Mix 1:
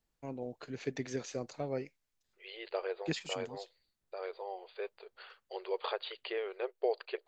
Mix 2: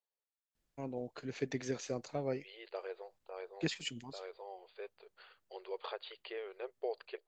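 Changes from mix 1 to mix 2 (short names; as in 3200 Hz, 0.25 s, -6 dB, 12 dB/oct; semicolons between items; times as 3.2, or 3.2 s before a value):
first voice: entry +0.55 s; second voice -6.5 dB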